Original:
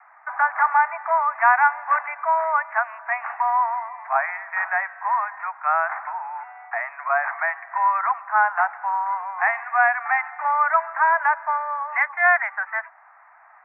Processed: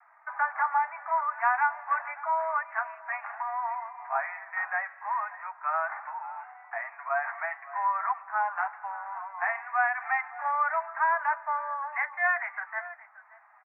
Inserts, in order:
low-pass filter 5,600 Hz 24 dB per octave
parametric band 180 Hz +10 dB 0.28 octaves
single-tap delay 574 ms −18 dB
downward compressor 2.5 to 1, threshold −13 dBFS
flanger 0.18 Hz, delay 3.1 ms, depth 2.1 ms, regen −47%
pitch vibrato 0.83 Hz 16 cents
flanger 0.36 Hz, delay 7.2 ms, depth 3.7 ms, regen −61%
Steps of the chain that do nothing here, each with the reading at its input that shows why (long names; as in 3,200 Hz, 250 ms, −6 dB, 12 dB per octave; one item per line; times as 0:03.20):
low-pass filter 5,600 Hz: nothing at its input above 2,600 Hz
parametric band 180 Hz: nothing at its input below 540 Hz